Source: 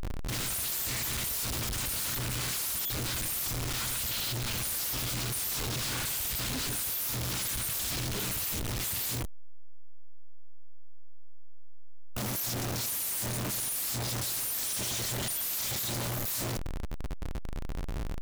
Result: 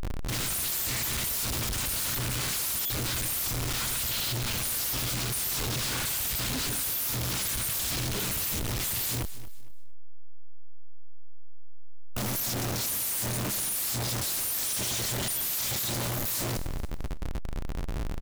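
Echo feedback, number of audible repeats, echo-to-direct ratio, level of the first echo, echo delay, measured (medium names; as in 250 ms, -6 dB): 28%, 2, -15.5 dB, -16.0 dB, 229 ms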